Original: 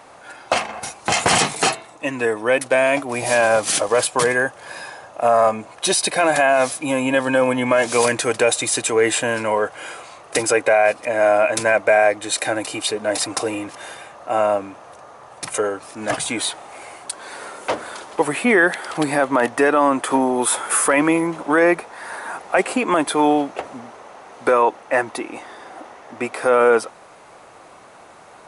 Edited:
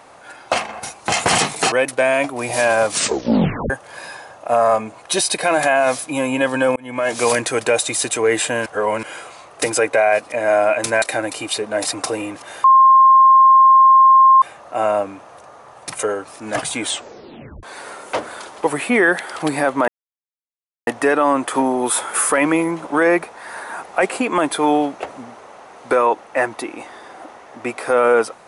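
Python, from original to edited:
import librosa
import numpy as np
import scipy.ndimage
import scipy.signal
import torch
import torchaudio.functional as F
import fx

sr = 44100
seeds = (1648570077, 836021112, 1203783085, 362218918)

y = fx.edit(x, sr, fx.cut(start_s=1.72, length_s=0.73),
    fx.tape_stop(start_s=3.63, length_s=0.8),
    fx.fade_in_span(start_s=7.49, length_s=0.42),
    fx.reverse_span(start_s=9.39, length_s=0.37),
    fx.cut(start_s=11.75, length_s=0.6),
    fx.insert_tone(at_s=13.97, length_s=1.78, hz=1060.0, db=-6.0),
    fx.tape_stop(start_s=16.38, length_s=0.8),
    fx.insert_silence(at_s=19.43, length_s=0.99), tone=tone)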